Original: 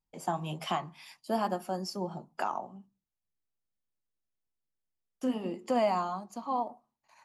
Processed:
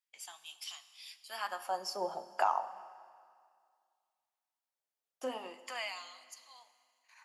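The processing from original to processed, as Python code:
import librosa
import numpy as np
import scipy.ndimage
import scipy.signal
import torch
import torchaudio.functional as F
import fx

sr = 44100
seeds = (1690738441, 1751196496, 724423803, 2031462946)

y = fx.filter_lfo_highpass(x, sr, shape='sine', hz=0.35, low_hz=560.0, high_hz=4700.0, q=1.5)
y = fx.rev_schroeder(y, sr, rt60_s=2.1, comb_ms=31, drr_db=13.5)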